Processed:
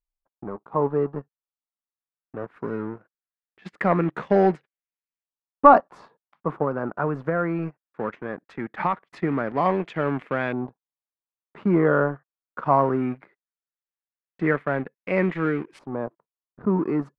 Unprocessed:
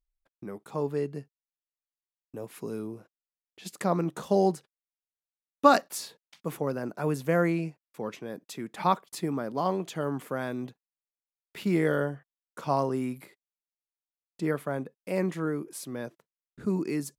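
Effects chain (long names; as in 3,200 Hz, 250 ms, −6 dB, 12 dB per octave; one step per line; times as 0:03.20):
leveller curve on the samples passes 2
0:06.63–0:09.03: downward compressor 6 to 1, threshold −20 dBFS, peak gain reduction 8 dB
auto-filter low-pass saw up 0.19 Hz 950–2,400 Hz
level −2 dB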